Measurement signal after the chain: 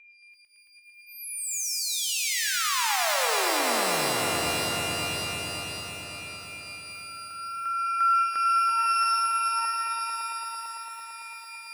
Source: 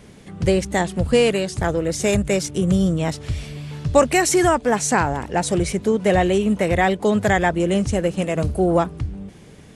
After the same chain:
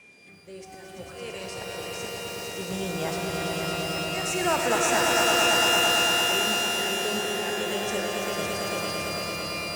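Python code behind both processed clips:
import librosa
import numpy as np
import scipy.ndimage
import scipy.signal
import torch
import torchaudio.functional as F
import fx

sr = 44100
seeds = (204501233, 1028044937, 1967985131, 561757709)

y = fx.highpass(x, sr, hz=570.0, slope=6)
y = y + 10.0 ** (-42.0 / 20.0) * np.sin(2.0 * np.pi * 2400.0 * np.arange(len(y)) / sr)
y = fx.auto_swell(y, sr, attack_ms=559.0)
y = fx.rotary(y, sr, hz=0.6)
y = fx.echo_swell(y, sr, ms=112, loudest=5, wet_db=-5.5)
y = fx.rev_shimmer(y, sr, seeds[0], rt60_s=2.3, semitones=12, shimmer_db=-2, drr_db=4.5)
y = y * librosa.db_to_amplitude(-5.5)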